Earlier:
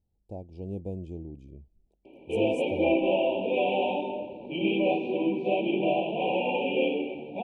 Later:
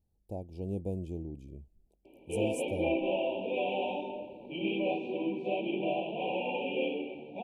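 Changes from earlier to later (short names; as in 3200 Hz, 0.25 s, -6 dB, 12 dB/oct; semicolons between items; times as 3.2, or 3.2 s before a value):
background -6.5 dB; master: remove air absorption 76 m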